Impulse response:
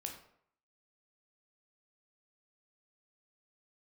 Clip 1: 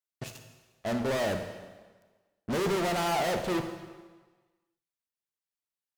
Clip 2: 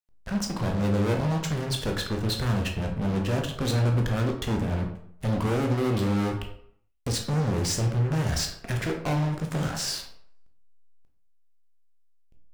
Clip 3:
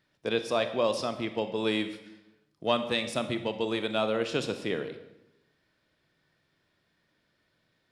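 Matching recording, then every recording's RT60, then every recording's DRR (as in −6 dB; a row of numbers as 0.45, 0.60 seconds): 2; 1.4, 0.65, 0.95 seconds; 5.5, 2.0, 9.0 decibels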